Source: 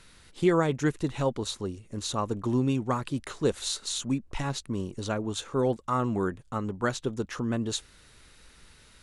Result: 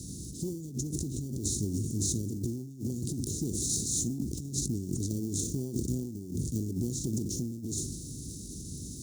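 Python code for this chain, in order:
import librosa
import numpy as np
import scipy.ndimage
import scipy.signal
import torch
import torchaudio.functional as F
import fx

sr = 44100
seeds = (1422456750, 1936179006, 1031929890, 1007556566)

p1 = fx.bin_compress(x, sr, power=0.6)
p2 = fx.transient(p1, sr, attack_db=-8, sustain_db=2)
p3 = fx.sample_hold(p2, sr, seeds[0], rate_hz=1300.0, jitter_pct=0)
p4 = p2 + F.gain(torch.from_numpy(p3), -5.0).numpy()
p5 = scipy.signal.sosfilt(scipy.signal.ellip(3, 1.0, 60, [270.0, 5900.0], 'bandstop', fs=sr, output='sos'), p4)
p6 = fx.peak_eq(p5, sr, hz=230.0, db=-5.0, octaves=0.89)
p7 = fx.room_early_taps(p6, sr, ms=(21, 60), db=(-14.0, -12.5))
p8 = fx.dynamic_eq(p7, sr, hz=380.0, q=2.0, threshold_db=-45.0, ratio=4.0, max_db=5)
p9 = fx.over_compress(p8, sr, threshold_db=-32.0, ratio=-0.5)
p10 = scipy.signal.sosfilt(scipy.signal.butter(4, 58.0, 'highpass', fs=sr, output='sos'), p9)
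y = fx.sustainer(p10, sr, db_per_s=56.0)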